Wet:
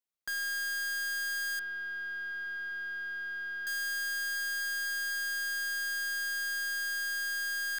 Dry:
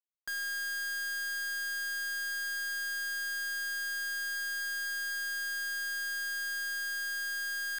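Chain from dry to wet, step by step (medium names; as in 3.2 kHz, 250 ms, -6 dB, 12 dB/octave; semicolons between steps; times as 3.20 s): 1.59–3.67 s: distance through air 430 m; trim +1.5 dB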